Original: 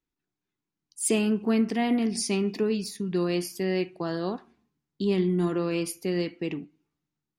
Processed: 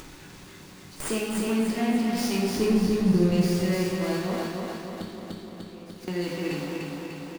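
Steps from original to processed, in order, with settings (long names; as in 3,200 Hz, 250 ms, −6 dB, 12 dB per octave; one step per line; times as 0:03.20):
converter with a step at zero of −28.5 dBFS
noise gate with hold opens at −26 dBFS
0:02.55–0:03.32: spectral tilt −3.5 dB per octave
0:05.02–0:06.08: gate with flip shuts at −28 dBFS, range −33 dB
repeating echo 297 ms, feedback 46%, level −3 dB
convolution reverb RT60 0.85 s, pre-delay 9 ms, DRR −2.5 dB
upward compression, threshold −22 dBFS
windowed peak hold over 3 samples
level −7.5 dB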